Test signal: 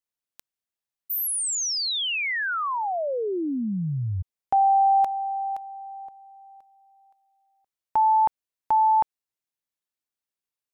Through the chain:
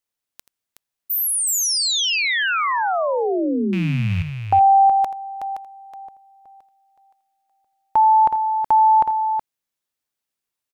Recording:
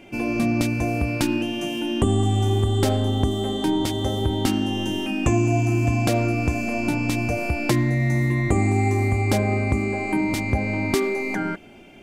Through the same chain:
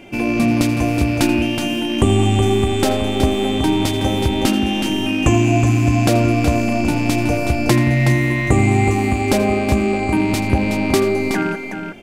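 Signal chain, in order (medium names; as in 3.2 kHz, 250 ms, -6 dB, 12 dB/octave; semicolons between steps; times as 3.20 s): rattle on loud lows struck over -29 dBFS, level -27 dBFS; multi-tap echo 82/371 ms -15.5/-7.5 dB; trim +5.5 dB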